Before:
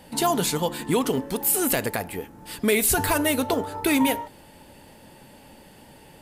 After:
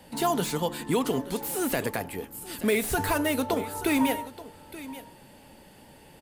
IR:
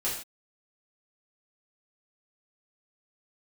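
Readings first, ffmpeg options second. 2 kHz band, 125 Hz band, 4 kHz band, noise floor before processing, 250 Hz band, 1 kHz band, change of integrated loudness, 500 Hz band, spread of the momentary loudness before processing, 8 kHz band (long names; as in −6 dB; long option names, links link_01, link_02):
−3.5 dB, −3.0 dB, −5.0 dB, −50 dBFS, −3.0 dB, −3.0 dB, −4.5 dB, −3.0 dB, 11 LU, −8.5 dB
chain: -filter_complex "[0:a]aecho=1:1:879:0.15,acrossover=split=220|2500[link_01][link_02][link_03];[link_03]volume=29.5dB,asoftclip=hard,volume=-29.5dB[link_04];[link_01][link_02][link_04]amix=inputs=3:normalize=0,volume=-3dB"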